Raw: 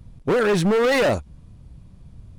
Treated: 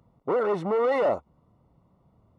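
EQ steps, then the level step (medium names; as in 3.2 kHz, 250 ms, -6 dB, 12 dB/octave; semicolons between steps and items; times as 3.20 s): Savitzky-Golay filter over 65 samples; high-pass 300 Hz 6 dB/octave; bass shelf 450 Hz -12 dB; +2.5 dB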